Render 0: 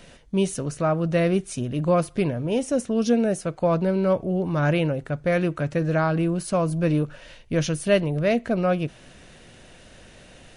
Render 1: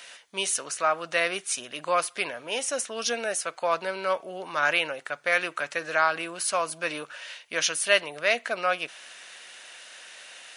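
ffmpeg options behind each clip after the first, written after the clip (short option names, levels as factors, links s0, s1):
-af "highpass=1200,volume=2.37"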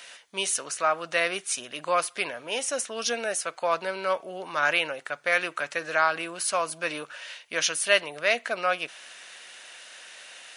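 -af anull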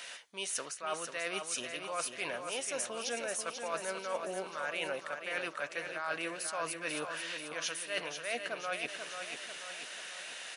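-af "areverse,acompressor=threshold=0.02:ratio=10,areverse,aecho=1:1:489|978|1467|1956|2445|2934|3423:0.447|0.241|0.13|0.0703|0.038|0.0205|0.0111"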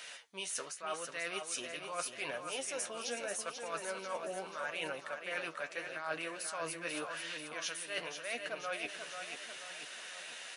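-af "flanger=delay=6.4:depth=6.1:regen=44:speed=0.82:shape=sinusoidal,volume=1.19"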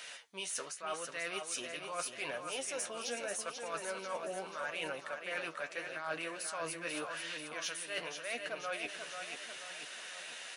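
-af "aeval=exprs='0.0668*(cos(1*acos(clip(val(0)/0.0668,-1,1)))-cos(1*PI/2))+0.00266*(cos(5*acos(clip(val(0)/0.0668,-1,1)))-cos(5*PI/2))':c=same,volume=0.891"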